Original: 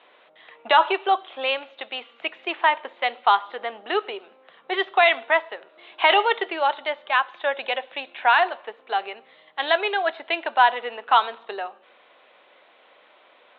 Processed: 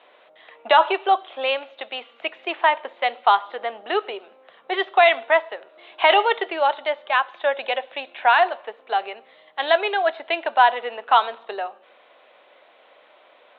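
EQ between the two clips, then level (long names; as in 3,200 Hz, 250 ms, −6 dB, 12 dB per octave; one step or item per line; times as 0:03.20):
high-pass filter 160 Hz
parametric band 620 Hz +4.5 dB 0.7 octaves
0.0 dB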